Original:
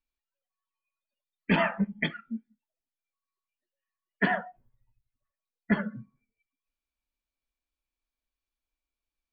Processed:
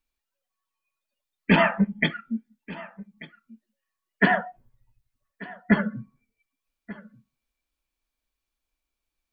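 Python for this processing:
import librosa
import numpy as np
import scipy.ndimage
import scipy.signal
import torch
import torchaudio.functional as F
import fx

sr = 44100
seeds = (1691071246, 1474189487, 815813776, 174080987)

y = x + 10.0 ** (-19.5 / 20.0) * np.pad(x, (int(1187 * sr / 1000.0), 0))[:len(x)]
y = y * librosa.db_to_amplitude(6.0)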